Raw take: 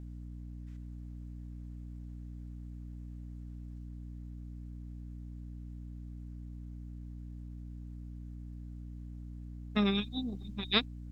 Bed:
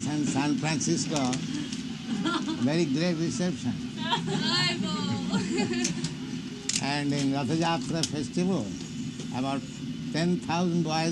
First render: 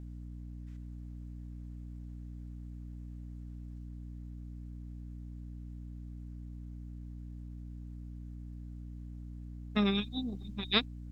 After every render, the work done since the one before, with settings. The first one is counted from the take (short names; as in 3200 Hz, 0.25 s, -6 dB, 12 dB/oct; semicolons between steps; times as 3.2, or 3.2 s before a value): nothing audible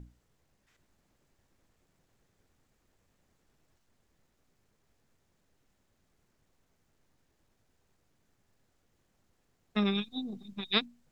notches 60/120/180/240/300 Hz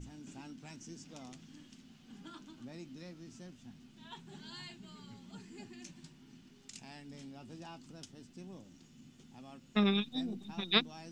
add bed -23 dB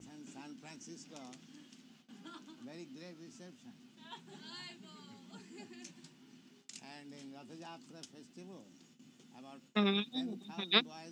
gate with hold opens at -50 dBFS; HPF 210 Hz 12 dB/oct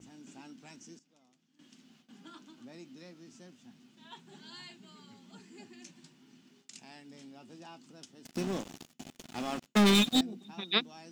0.62–1.96 dip -17 dB, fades 0.37 s logarithmic; 8.25–10.21 sample leveller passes 5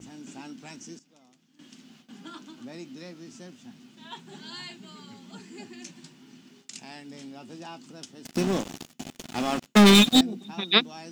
gain +8.5 dB